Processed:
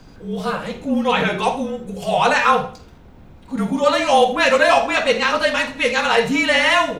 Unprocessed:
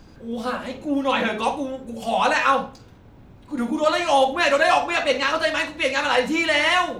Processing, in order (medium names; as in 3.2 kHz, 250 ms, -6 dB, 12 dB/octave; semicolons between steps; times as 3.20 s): frequency shift -37 Hz; on a send: feedback delay 80 ms, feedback 31%, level -17 dB; on the sum: trim +3.5 dB